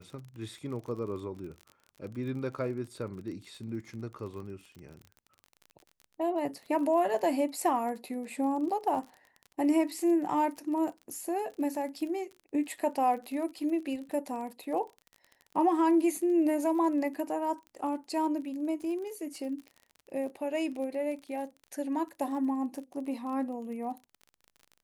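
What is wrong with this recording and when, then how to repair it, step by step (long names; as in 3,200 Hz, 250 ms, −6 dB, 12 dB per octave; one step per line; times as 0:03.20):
surface crackle 33 per second −40 dBFS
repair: click removal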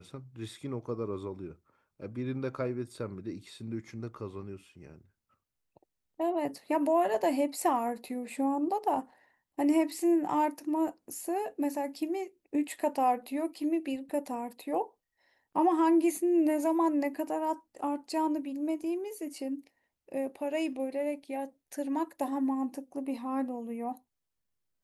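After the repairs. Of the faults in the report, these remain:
none of them is left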